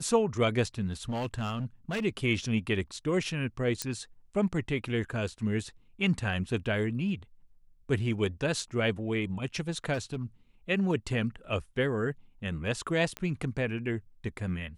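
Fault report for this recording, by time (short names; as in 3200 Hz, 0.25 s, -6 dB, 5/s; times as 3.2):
1.09–2.05 clipped -28.5 dBFS
3.82 pop -15 dBFS
9.93–10.24 clipped -28 dBFS
13.17 pop -20 dBFS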